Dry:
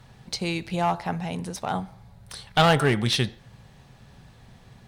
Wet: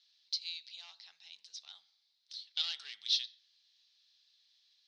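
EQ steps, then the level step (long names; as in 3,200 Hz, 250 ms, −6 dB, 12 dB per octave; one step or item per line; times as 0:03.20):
flat-topped band-pass 4,500 Hz, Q 2.2
high-frequency loss of the air 78 metres
0.0 dB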